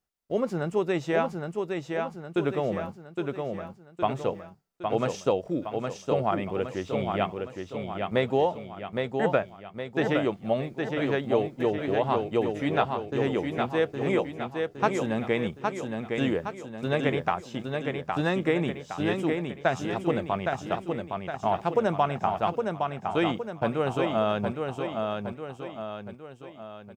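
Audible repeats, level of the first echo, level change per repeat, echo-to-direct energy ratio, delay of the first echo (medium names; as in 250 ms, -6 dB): 4, -4.5 dB, -6.0 dB, -3.5 dB, 814 ms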